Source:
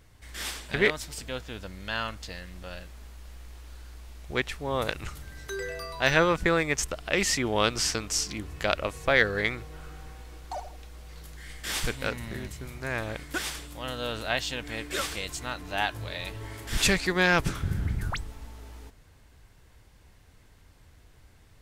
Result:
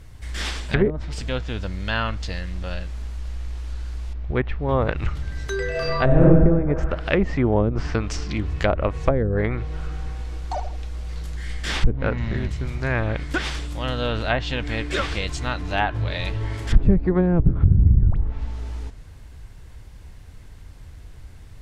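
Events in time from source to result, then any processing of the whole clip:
4.13–4.69 tape spacing loss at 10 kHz 29 dB
5.7–6.22 reverb throw, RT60 1.5 s, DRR -6.5 dB
11.9–12.37 brick-wall FIR low-pass 7700 Hz
whole clip: low shelf 160 Hz +10 dB; treble ducked by the level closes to 380 Hz, closed at -18 dBFS; gain +6.5 dB

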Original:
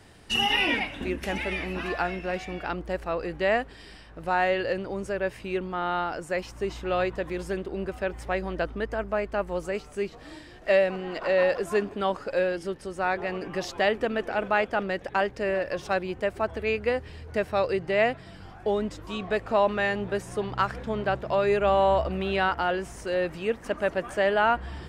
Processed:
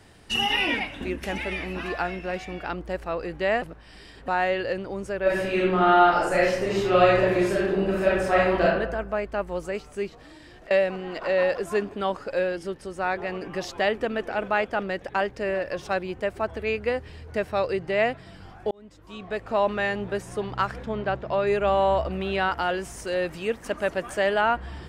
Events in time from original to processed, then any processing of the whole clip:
3.62–4.28 reverse
5.22–8.63 reverb throw, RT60 0.9 s, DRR -8.5 dB
10.1–10.71 compressor, threshold -43 dBFS
18.71–19.67 fade in
20.86–21.47 air absorption 80 m
22.51–24.41 high shelf 4100 Hz +7 dB

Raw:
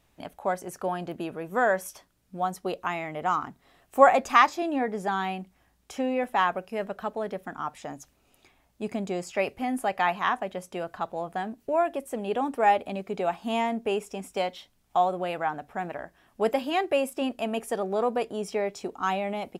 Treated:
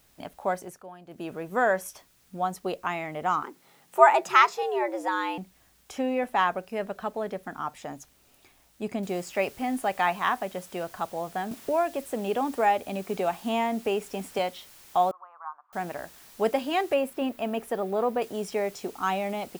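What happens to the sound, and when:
0.58–1.32 dip -15 dB, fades 0.26 s
3.43–5.38 frequency shift +120 Hz
9.03 noise floor step -64 dB -52 dB
11.51–14.39 three-band squash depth 40%
15.11–15.73 Butterworth band-pass 1100 Hz, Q 3.9
16.94–18.22 bell 6800 Hz -8.5 dB 1.8 oct

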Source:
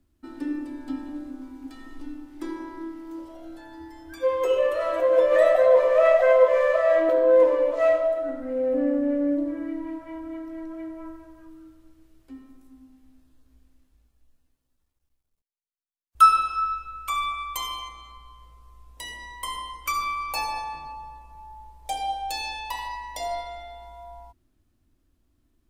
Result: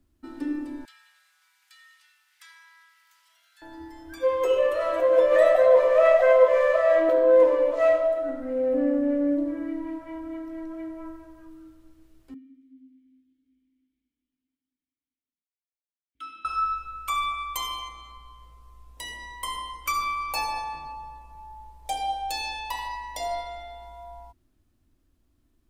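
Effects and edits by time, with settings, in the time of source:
0.85–3.62 inverse Chebyshev high-pass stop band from 280 Hz, stop band 80 dB
12.34–16.45 vowel filter i

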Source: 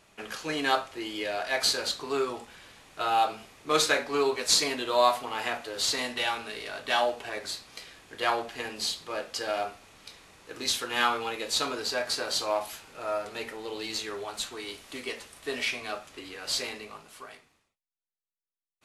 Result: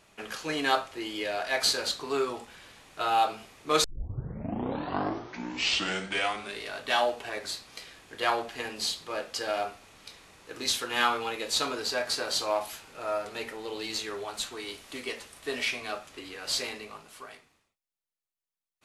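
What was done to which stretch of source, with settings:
3.84 tape start 2.82 s

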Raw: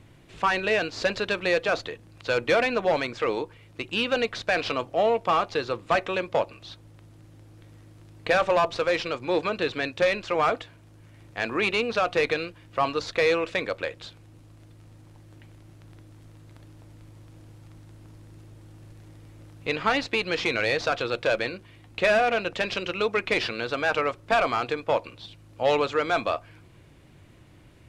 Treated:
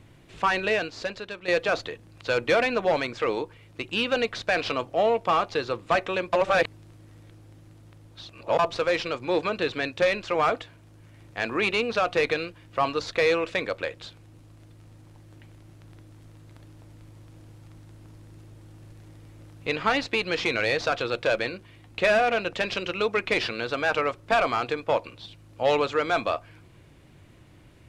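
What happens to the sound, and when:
0.68–1.48 fade out quadratic, to -11 dB
6.33–8.59 reverse

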